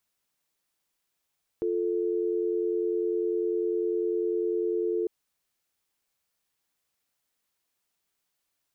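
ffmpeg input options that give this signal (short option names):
-f lavfi -i "aevalsrc='0.0422*(sin(2*PI*350*t)+sin(2*PI*440*t))':d=3.45:s=44100"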